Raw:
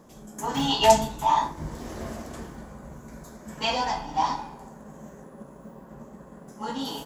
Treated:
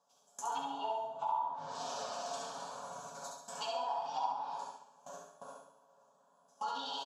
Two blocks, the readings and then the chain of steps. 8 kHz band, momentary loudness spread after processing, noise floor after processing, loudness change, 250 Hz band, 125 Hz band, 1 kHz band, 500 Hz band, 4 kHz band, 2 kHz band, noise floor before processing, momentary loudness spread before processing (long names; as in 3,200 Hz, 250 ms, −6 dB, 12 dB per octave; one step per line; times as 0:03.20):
−11.0 dB, 16 LU, −70 dBFS, −13.5 dB, −22.0 dB, −25.5 dB, −10.5 dB, −14.0 dB, −14.0 dB, −16.0 dB, −48 dBFS, 24 LU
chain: noise gate with hold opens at −33 dBFS
treble cut that deepens with the level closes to 860 Hz, closed at −21.5 dBFS
spectral tilt +3.5 dB per octave
comb filter 7.1 ms, depth 53%
downward compressor 10 to 1, threshold −38 dBFS, peak gain reduction 23 dB
band-pass filter 300–4,600 Hz
phaser with its sweep stopped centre 830 Hz, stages 4
repeating echo 68 ms, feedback 41%, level −4 dB
coupled-rooms reverb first 0.51 s, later 2.1 s, from −17 dB, DRR 4 dB
level +3 dB